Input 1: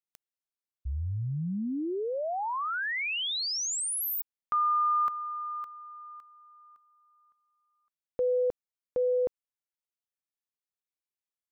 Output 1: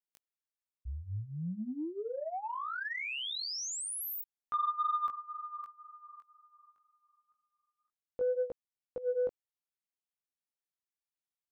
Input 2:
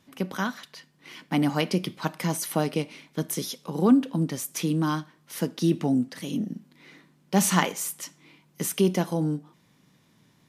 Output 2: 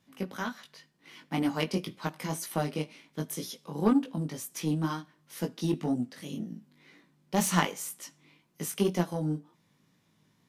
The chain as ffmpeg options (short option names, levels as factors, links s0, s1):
-af "flanger=delay=17:depth=3.3:speed=2,aeval=exprs='0.355*(cos(1*acos(clip(val(0)/0.355,-1,1)))-cos(1*PI/2))+0.0178*(cos(7*acos(clip(val(0)/0.355,-1,1)))-cos(7*PI/2))':c=same"